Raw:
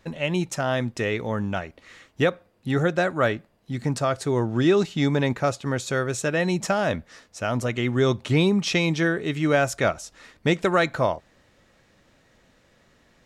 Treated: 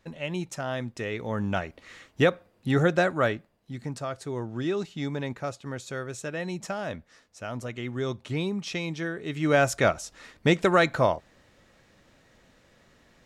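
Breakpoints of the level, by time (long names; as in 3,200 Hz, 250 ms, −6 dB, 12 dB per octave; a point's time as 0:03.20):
0:01.09 −7 dB
0:01.54 0 dB
0:02.98 0 dB
0:03.92 −9.5 dB
0:09.14 −9.5 dB
0:09.60 0 dB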